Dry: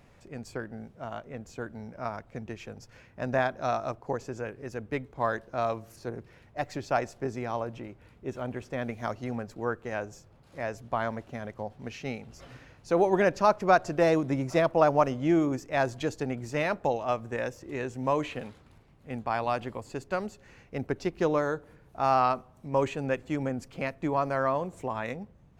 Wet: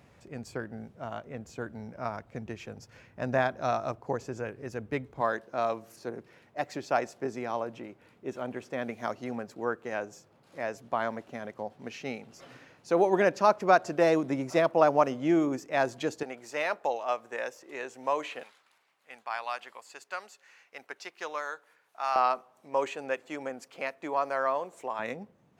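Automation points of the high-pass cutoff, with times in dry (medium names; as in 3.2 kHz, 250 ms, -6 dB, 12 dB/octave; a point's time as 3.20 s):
65 Hz
from 5.21 s 200 Hz
from 16.23 s 530 Hz
from 18.43 s 1.1 kHz
from 22.16 s 480 Hz
from 24.99 s 210 Hz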